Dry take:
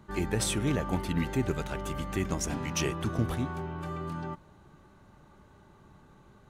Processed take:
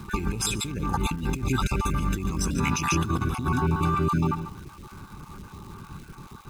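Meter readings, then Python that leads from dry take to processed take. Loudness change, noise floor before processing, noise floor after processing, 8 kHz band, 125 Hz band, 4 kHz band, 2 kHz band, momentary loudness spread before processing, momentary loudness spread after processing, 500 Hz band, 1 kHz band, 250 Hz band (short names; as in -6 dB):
+5.5 dB, -58 dBFS, -47 dBFS, +4.0 dB, +6.0 dB, +4.5 dB, +6.0 dB, 8 LU, 19 LU, +1.0 dB, +9.5 dB, +4.5 dB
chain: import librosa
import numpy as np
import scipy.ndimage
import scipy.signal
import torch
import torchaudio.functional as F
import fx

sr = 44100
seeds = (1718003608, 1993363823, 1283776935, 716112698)

p1 = fx.spec_dropout(x, sr, seeds[0], share_pct=27)
p2 = p1 + 0.87 * np.pad(p1, (int(0.8 * sr / 1000.0), 0))[:len(p1)]
p3 = p2 + fx.echo_single(p2, sr, ms=142, db=-11.0, dry=0)
p4 = fx.over_compress(p3, sr, threshold_db=-33.0, ratio=-1.0)
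p5 = fx.dmg_crackle(p4, sr, seeds[1], per_s=520.0, level_db=-48.0)
y = F.gain(torch.from_numpy(p5), 7.0).numpy()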